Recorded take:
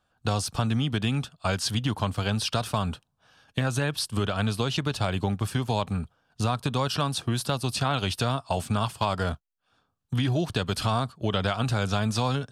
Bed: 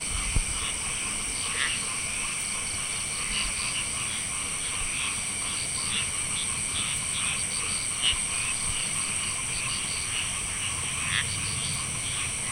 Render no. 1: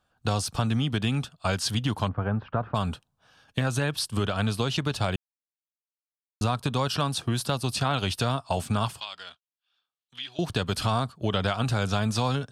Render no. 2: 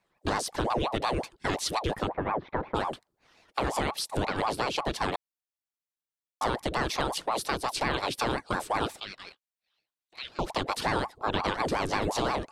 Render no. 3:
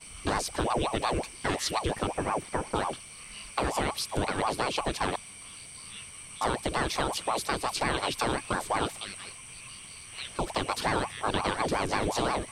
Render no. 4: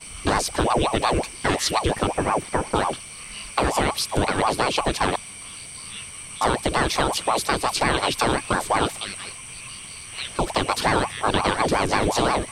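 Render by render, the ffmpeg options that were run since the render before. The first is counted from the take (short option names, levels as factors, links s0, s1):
-filter_complex "[0:a]asplit=3[s0][s1][s2];[s0]afade=t=out:st=2.07:d=0.02[s3];[s1]lowpass=f=1600:w=0.5412,lowpass=f=1600:w=1.3066,afade=t=in:st=2.07:d=0.02,afade=t=out:st=2.74:d=0.02[s4];[s2]afade=t=in:st=2.74:d=0.02[s5];[s3][s4][s5]amix=inputs=3:normalize=0,asettb=1/sr,asplit=3[s6][s7][s8];[s6]atrim=end=9.004[s9];[s7]atrim=start=9:end=10.39,asetpts=PTS-STARTPTS,afade=t=in:d=0.004:c=qsin,afade=t=out:st=1.386:d=0.004:c=qsin,bandpass=f=3300:t=q:w=1.9[s10];[s8]atrim=start=10.386[s11];[s9][s10]acrossfade=d=0.004:c1=hsin:c2=qsin[s12];[s12][s11]acrossfade=d=0.004:c1=qsin:c2=hsin,asplit=3[s13][s14][s15];[s13]atrim=end=5.16,asetpts=PTS-STARTPTS,afade=t=out:st=5.156:d=0.004:c=hsin[s16];[s14]atrim=start=5.16:end=6.41,asetpts=PTS-STARTPTS,volume=0[s17];[s15]atrim=start=6.41,asetpts=PTS-STARTPTS,afade=t=in:d=0.004:c=hsin[s18];[s16][s17][s18]concat=n=3:v=0:a=1"
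-af "aeval=exprs='val(0)*sin(2*PI*590*n/s+590*0.7/5.6*sin(2*PI*5.6*n/s))':c=same"
-filter_complex "[1:a]volume=0.168[s0];[0:a][s0]amix=inputs=2:normalize=0"
-af "volume=2.37"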